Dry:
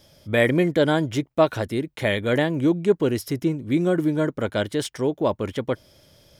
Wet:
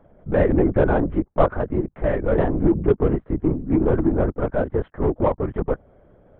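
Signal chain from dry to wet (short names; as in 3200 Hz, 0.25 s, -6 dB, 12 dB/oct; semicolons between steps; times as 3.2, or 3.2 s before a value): LPF 1400 Hz 24 dB/oct; in parallel at -4.5 dB: soft clip -22.5 dBFS, distortion -8 dB; on the sum: LPC vocoder at 8 kHz whisper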